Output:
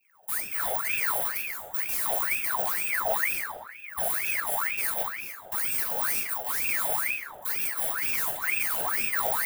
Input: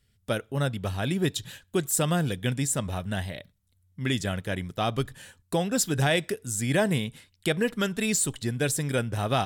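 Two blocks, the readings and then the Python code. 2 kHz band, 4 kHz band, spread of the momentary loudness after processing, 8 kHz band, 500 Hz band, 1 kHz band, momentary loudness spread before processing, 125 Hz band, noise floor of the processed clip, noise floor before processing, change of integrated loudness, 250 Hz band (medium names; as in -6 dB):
+3.5 dB, -6.5 dB, 6 LU, -2.0 dB, -8.5 dB, +1.0 dB, 8 LU, -25.5 dB, -45 dBFS, -69 dBFS, +1.5 dB, -23.0 dB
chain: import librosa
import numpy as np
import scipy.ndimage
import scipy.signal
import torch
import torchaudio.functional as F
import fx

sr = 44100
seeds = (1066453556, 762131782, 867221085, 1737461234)

y = fx.bit_reversed(x, sr, seeds[0], block=128)
y = fx.recorder_agc(y, sr, target_db=-15.5, rise_db_per_s=24.0, max_gain_db=30)
y = fx.high_shelf(y, sr, hz=7700.0, db=6.0)
y = fx.whisperise(y, sr, seeds[1])
y = fx.phaser_stages(y, sr, stages=6, low_hz=180.0, high_hz=3700.0, hz=2.4, feedback_pct=25)
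y = np.clip(10.0 ** (24.5 / 20.0) * y, -1.0, 1.0) / 10.0 ** (24.5 / 20.0)
y = fx.fixed_phaser(y, sr, hz=1500.0, stages=6)
y = fx.doubler(y, sr, ms=41.0, db=-6.0)
y = fx.echo_wet_bandpass(y, sr, ms=146, feedback_pct=58, hz=440.0, wet_db=-6.0)
y = fx.room_shoebox(y, sr, seeds[2], volume_m3=640.0, walls='mixed', distance_m=1.4)
y = fx.ring_lfo(y, sr, carrier_hz=1600.0, swing_pct=60, hz=2.1)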